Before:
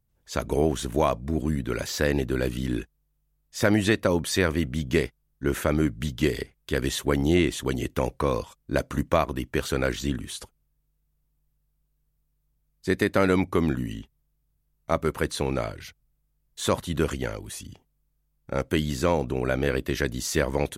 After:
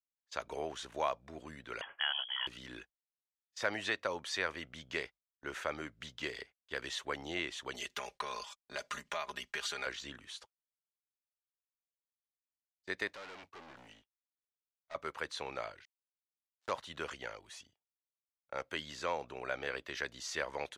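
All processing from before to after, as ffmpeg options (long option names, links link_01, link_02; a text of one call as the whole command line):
ffmpeg -i in.wav -filter_complex "[0:a]asettb=1/sr,asplit=3[link_01][link_02][link_03];[link_01]atrim=end=1.814[link_04];[link_02]atrim=start=1.81:end=2.47,asetpts=PTS-STARTPTS,afade=type=in:duration=0.004:curve=qsin,afade=type=out:start_time=0.656:duration=0.004:curve=qsin,tiltshelf=frequency=1400:gain=-6,lowpass=frequency=2900:width_type=q:width=0.5098,lowpass=frequency=2900:width_type=q:width=0.6013,lowpass=frequency=2900:width_type=q:width=0.9,lowpass=frequency=2900:width_type=q:width=2.563,afreqshift=-3400[link_05];[link_03]atrim=start=2.466[link_06];[link_04][link_05]acrossfade=duration=0.004:curve1=hsin:curve2=qsin[link_07];[link_07][link_06]acrossfade=duration=0.004:curve1=qsin:curve2=hsin,asettb=1/sr,asplit=3[link_08][link_09][link_10];[link_08]atrim=end=7.744[link_11];[link_09]atrim=start=7.74:end=9.86,asetpts=PTS-STARTPTS,afade=type=in:duration=0.004:curve=qsin,afade=type=out:start_time=2.116:duration=0.004:curve=qsin,highshelf=frequency=2100:gain=12,acompressor=threshold=-25dB:ratio=6:attack=3.2:release=140:knee=1:detection=peak,aecho=1:1:4.9:0.86,atrim=end_sample=93492[link_12];[link_10]atrim=start=9.856[link_13];[link_11][link_12]acrossfade=duration=0.004:curve1=hsin:curve2=qsin[link_14];[link_14][link_13]acrossfade=duration=0.004:curve1=qsin:curve2=hsin,asettb=1/sr,asplit=3[link_15][link_16][link_17];[link_15]atrim=end=13.074[link_18];[link_16]atrim=start=13.07:end=14.95,asetpts=PTS-STARTPTS,afade=type=in:duration=0.004:curve=qsin,afade=type=out:start_time=1.876:duration=0.004:curve=qsin,aeval=exprs='(tanh(50.1*val(0)+0.2)-tanh(0.2))/50.1':channel_layout=same,acrusher=bits=6:mode=log:mix=0:aa=0.000001[link_19];[link_17]atrim=start=14.946[link_20];[link_18][link_19]acrossfade=duration=0.004:curve1=hsin:curve2=qsin[link_21];[link_21][link_20]acrossfade=duration=0.004:curve1=qsin:curve2=hsin,asettb=1/sr,asplit=3[link_22][link_23][link_24];[link_22]atrim=end=15.854[link_25];[link_23]atrim=start=15.85:end=16.71,asetpts=PTS-STARTPTS,afade=type=in:duration=0.004:curve=qsin,afade=type=out:start_time=0.856:duration=0.004:curve=qsin,aeval=exprs='val(0)+0.5*0.02*sgn(val(0))':channel_layout=same,equalizer=frequency=2500:width=0.57:gain=-9,acrusher=bits=3:mix=0:aa=0.5[link_26];[link_24]atrim=start=16.706[link_27];[link_25][link_26]acrossfade=duration=0.004:curve1=hsin:curve2=qsin[link_28];[link_28][link_27]acrossfade=duration=0.004:curve1=qsin:curve2=hsin,agate=range=-23dB:threshold=-39dB:ratio=16:detection=peak,acrossover=split=560 6600:gain=0.1 1 0.0794[link_29][link_30][link_31];[link_29][link_30][link_31]amix=inputs=3:normalize=0,volume=-7.5dB" out.wav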